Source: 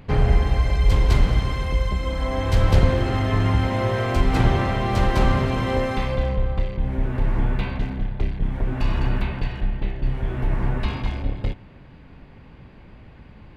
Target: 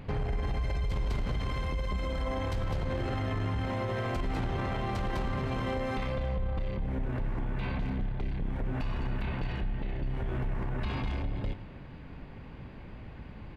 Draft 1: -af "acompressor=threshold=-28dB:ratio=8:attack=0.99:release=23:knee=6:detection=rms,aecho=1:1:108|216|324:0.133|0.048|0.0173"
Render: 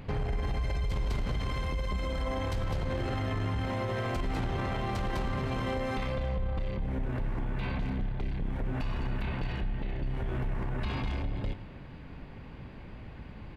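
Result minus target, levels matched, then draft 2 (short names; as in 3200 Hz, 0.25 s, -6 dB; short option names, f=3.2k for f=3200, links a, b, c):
8000 Hz band +2.5 dB
-af "acompressor=threshold=-28dB:ratio=8:attack=0.99:release=23:knee=6:detection=rms,highshelf=f=4.2k:g=-3.5,aecho=1:1:108|216|324:0.133|0.048|0.0173"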